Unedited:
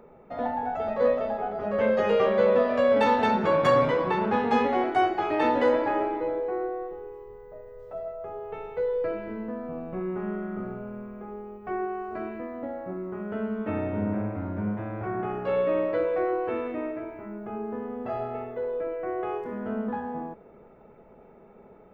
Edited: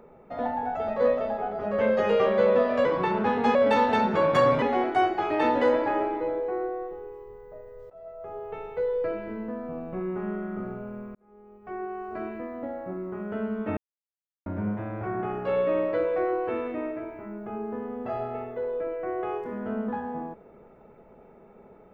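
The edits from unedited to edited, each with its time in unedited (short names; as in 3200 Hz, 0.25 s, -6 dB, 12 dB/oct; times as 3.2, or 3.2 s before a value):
3.92–4.62 move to 2.85
7.9–8.37 fade in, from -18.5 dB
11.15–12.23 fade in
13.77–14.46 mute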